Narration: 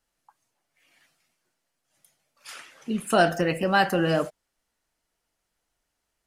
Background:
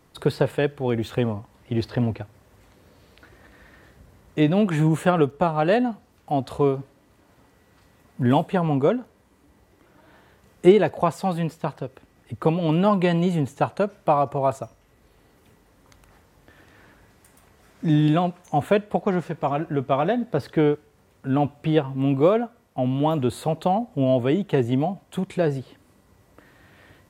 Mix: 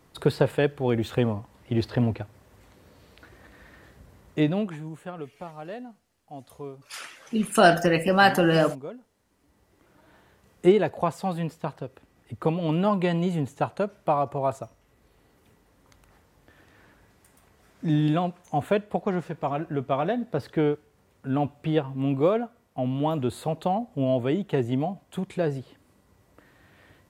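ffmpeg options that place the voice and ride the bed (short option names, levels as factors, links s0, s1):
-filter_complex "[0:a]adelay=4450,volume=1.41[s0];[1:a]volume=4.73,afade=t=out:st=4.26:d=0.54:silence=0.133352,afade=t=in:st=9.02:d=0.89:silence=0.199526[s1];[s0][s1]amix=inputs=2:normalize=0"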